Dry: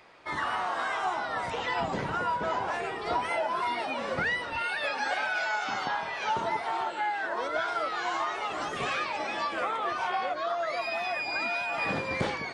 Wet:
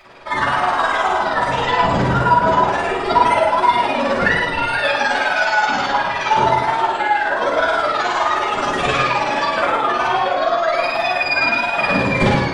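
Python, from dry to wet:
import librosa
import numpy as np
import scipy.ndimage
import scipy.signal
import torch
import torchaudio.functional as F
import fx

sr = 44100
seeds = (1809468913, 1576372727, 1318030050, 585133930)

p1 = x * (1.0 - 0.88 / 2.0 + 0.88 / 2.0 * np.cos(2.0 * np.pi * 19.0 * (np.arange(len(x)) / sr)))
p2 = p1 + fx.echo_single(p1, sr, ms=118, db=-6.5, dry=0)
p3 = fx.room_shoebox(p2, sr, seeds[0], volume_m3=270.0, walls='furnished', distance_m=6.4)
y = p3 * 10.0 ** (5.5 / 20.0)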